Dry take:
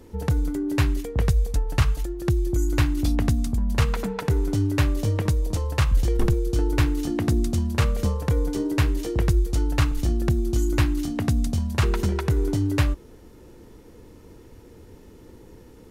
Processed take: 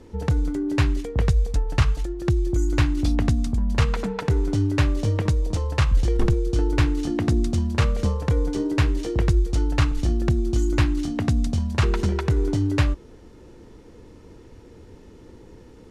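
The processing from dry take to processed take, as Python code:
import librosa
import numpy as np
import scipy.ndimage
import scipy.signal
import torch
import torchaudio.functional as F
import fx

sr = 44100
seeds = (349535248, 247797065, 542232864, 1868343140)

y = scipy.signal.sosfilt(scipy.signal.butter(2, 7200.0, 'lowpass', fs=sr, output='sos'), x)
y = y * 10.0 ** (1.0 / 20.0)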